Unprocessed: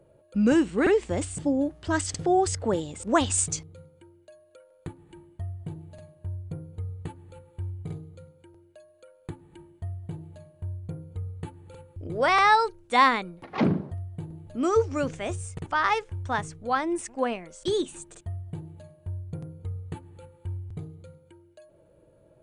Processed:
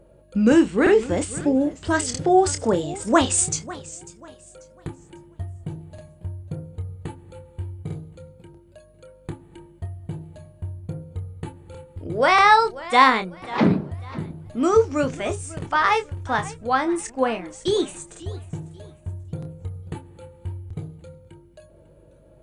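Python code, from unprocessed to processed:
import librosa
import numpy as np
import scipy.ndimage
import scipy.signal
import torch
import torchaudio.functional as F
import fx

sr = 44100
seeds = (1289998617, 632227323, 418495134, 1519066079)

y = fx.add_hum(x, sr, base_hz=50, snr_db=32)
y = fx.doubler(y, sr, ms=27.0, db=-9.0)
y = fx.echo_warbled(y, sr, ms=543, feedback_pct=31, rate_hz=2.8, cents=163, wet_db=-18.0)
y = y * 10.0 ** (4.5 / 20.0)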